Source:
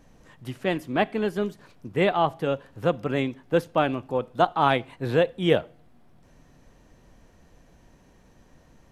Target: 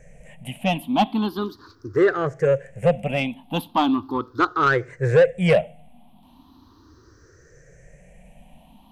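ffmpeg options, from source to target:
ffmpeg -i in.wav -af "afftfilt=real='re*pow(10,24/40*sin(2*PI*(0.52*log(max(b,1)*sr/1024/100)/log(2)-(0.38)*(pts-256)/sr)))':imag='im*pow(10,24/40*sin(2*PI*(0.52*log(max(b,1)*sr/1024/100)/log(2)-(0.38)*(pts-256)/sr)))':win_size=1024:overlap=0.75,acontrast=84,volume=-7.5dB" out.wav

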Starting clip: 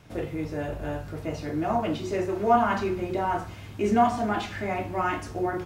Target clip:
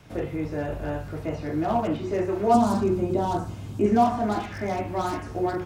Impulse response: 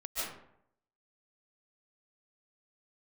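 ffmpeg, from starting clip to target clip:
-filter_complex "[0:a]acrossover=split=2500[link_01][link_02];[link_02]acompressor=threshold=-55dB:ratio=4:attack=1:release=60[link_03];[link_01][link_03]amix=inputs=2:normalize=0,acrossover=split=240|1200[link_04][link_05][link_06];[link_06]aeval=exprs='0.0112*(abs(mod(val(0)/0.0112+3,4)-2)-1)':channel_layout=same[link_07];[link_04][link_05][link_07]amix=inputs=3:normalize=0,asettb=1/sr,asplit=3[link_08][link_09][link_10];[link_08]atrim=end=2.544[link_11];[link_09]atrim=start=2.54:end=3.86,asetpts=PTS-STARTPTS,afade=type=in:duration=0.004:curve=qsin,afade=type=out:start_time=1.316:duration=0.004:curve=qsin,equalizer=frequency=125:width_type=o:width=1:gain=5,equalizer=frequency=250:width_type=o:width=1:gain=5,equalizer=frequency=2000:width_type=o:width=1:gain=-9,equalizer=frequency=8000:width_type=o:width=1:gain=6[link_12];[link_10]atrim=start=3.856[link_13];[link_11][link_12]acrossfade=duration=0.004:curve1=hsin:curve2=qsin[link_14];[link_14][link_13]acrossfade=duration=0.004:curve1=qsin:curve2=hsin,volume=2dB"

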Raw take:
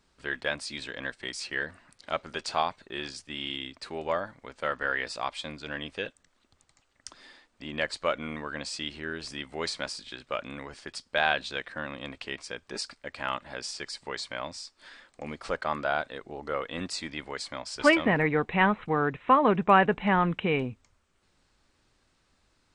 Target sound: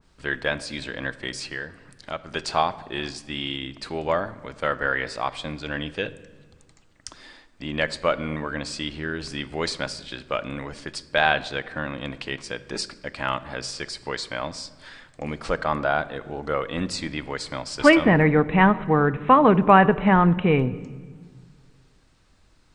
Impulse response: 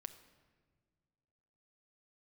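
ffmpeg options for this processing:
-filter_complex "[0:a]asettb=1/sr,asplit=3[link_01][link_02][link_03];[link_01]atrim=end=1.464[link_04];[link_02]atrim=start=1.46:end=2.31,asetpts=PTS-STARTPTS,afade=type=in:duration=0.004:curve=qsin,afade=type=out:start_time=0.846:duration=0.004:curve=qsin,acompressor=threshold=-45dB:ratio=1.5[link_05];[link_03]atrim=start=2.306[link_06];[link_04][link_05]acrossfade=duration=0.004:curve1=hsin:curve2=qsin[link_07];[link_07][link_06]acrossfade=duration=0.004:curve1=qsin:curve2=hsin,asplit=2[link_08][link_09];[1:a]atrim=start_sample=2205,lowshelf=frequency=230:gain=10.5[link_10];[link_09][link_10]afir=irnorm=-1:irlink=0,volume=6.5dB[link_11];[link_08][link_11]amix=inputs=2:normalize=0,adynamicequalizer=threshold=0.02:dfrequency=2200:dqfactor=0.7:tfrequency=2200:tqfactor=0.7:attack=5:release=100:ratio=0.375:range=3.5:mode=cutabove:tftype=highshelf,volume=-1.5dB"

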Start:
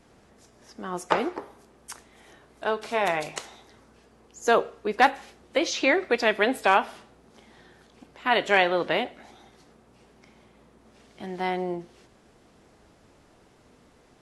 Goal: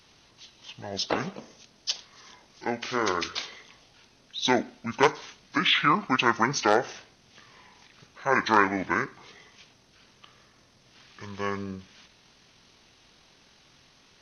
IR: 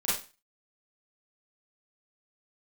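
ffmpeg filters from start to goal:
-af "crystalizer=i=9:c=0,asetrate=24046,aresample=44100,atempo=1.83401,volume=-7dB"

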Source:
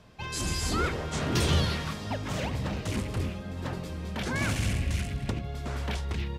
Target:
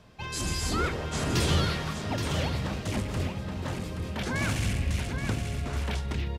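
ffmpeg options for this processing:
ffmpeg -i in.wav -filter_complex "[0:a]asplit=2[link_01][link_02];[link_02]aecho=0:1:825:0.447[link_03];[link_01][link_03]amix=inputs=2:normalize=0" out.wav

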